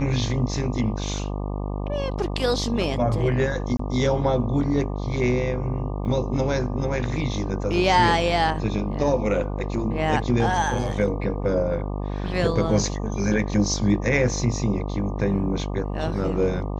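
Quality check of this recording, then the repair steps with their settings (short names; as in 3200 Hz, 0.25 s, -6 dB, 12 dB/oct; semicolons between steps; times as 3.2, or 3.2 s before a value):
buzz 50 Hz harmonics 24 -28 dBFS
3.77–3.79 gap 24 ms
6.05 gap 2.1 ms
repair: de-hum 50 Hz, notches 24; interpolate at 3.77, 24 ms; interpolate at 6.05, 2.1 ms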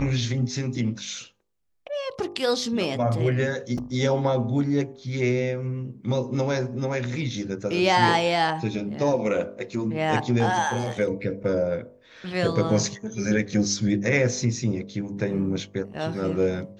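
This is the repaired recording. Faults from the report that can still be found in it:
none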